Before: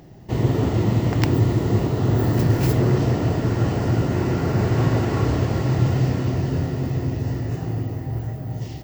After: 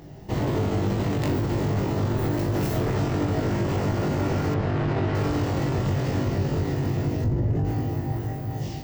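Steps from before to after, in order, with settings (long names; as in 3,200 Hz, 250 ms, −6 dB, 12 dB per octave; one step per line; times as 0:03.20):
hard clipping −20.5 dBFS, distortion −9 dB
0:07.24–0:07.65: spectral tilt −3.5 dB per octave
soft clipping −13.5 dBFS, distortion −17 dB
flutter between parallel walls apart 3.5 metres, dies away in 0.32 s
brickwall limiter −17 dBFS, peak gain reduction 7.5 dB
0:04.54–0:05.15: low-pass filter 3,600 Hz 12 dB per octave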